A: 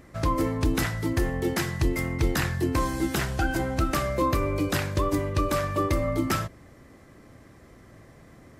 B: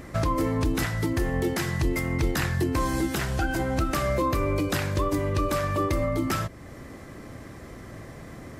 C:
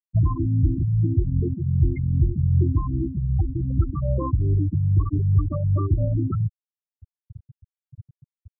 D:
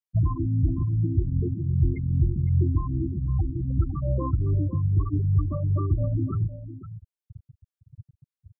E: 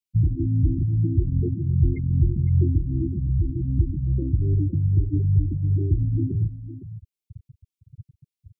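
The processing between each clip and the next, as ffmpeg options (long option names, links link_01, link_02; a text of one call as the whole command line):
ffmpeg -i in.wav -af "alimiter=level_in=1.5dB:limit=-24dB:level=0:latency=1:release=417,volume=-1.5dB,volume=9dB" out.wav
ffmpeg -i in.wav -af "equalizer=frequency=97:width=0.72:gain=14.5,afftfilt=real='re*gte(hypot(re,im),0.398)':imag='im*gte(hypot(re,im),0.398)':win_size=1024:overlap=0.75,volume=-3.5dB" out.wav
ffmpeg -i in.wav -af "aecho=1:1:510:0.224,volume=-3dB" out.wav
ffmpeg -i in.wav -af "asuperstop=centerf=970:order=20:qfactor=0.61,volume=2.5dB" out.wav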